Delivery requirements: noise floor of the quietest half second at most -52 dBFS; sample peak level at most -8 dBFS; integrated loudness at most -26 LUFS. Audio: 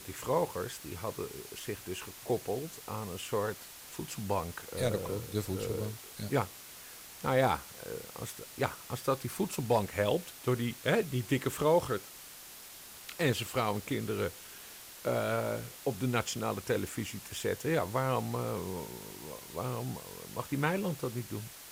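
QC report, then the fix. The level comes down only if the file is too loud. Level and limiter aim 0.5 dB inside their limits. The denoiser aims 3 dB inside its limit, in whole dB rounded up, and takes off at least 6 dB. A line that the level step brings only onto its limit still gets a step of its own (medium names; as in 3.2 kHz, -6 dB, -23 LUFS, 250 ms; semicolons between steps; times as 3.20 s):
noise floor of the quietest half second -50 dBFS: fail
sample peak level -14.5 dBFS: pass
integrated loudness -34.5 LUFS: pass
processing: noise reduction 6 dB, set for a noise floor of -50 dBFS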